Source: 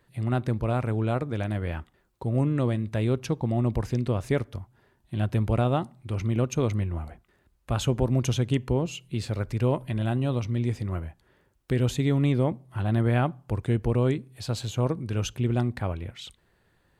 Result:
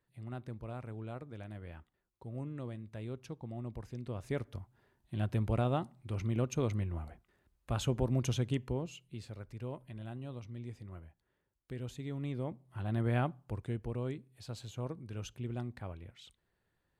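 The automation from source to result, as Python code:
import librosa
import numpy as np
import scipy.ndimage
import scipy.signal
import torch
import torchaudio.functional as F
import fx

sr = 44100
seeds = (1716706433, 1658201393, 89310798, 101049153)

y = fx.gain(x, sr, db=fx.line((3.93, -17.0), (4.56, -7.5), (8.41, -7.5), (9.42, -17.5), (12.01, -17.5), (13.19, -7.5), (13.87, -14.0)))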